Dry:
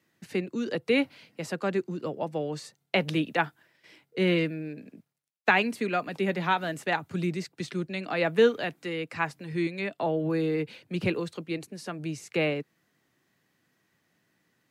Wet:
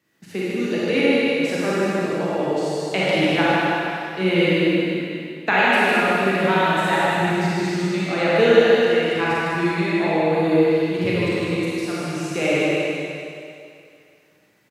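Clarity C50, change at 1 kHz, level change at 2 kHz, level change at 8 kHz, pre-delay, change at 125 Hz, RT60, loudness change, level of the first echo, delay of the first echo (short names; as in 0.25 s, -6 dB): -7.5 dB, +10.0 dB, +10.0 dB, +10.0 dB, 29 ms, +8.0 dB, 2.4 s, +9.5 dB, -2.5 dB, 0.153 s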